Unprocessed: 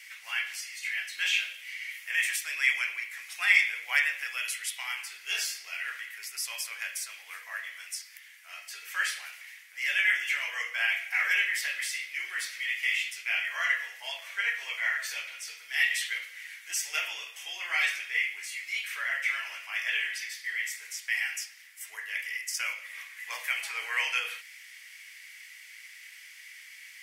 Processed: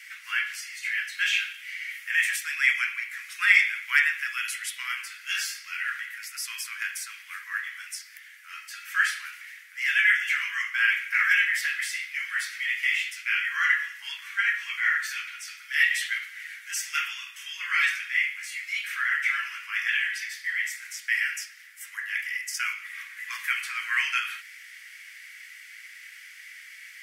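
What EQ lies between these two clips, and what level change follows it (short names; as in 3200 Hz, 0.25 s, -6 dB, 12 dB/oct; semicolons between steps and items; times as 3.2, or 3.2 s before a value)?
steep high-pass 1100 Hz 48 dB/oct; bell 1500 Hz +8 dB 0.82 oct; 0.0 dB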